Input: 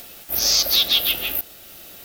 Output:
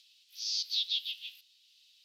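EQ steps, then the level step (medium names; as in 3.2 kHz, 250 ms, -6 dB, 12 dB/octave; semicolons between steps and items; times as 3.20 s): Butterworth band-pass 3.6 kHz, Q 1.7; differentiator; -7.5 dB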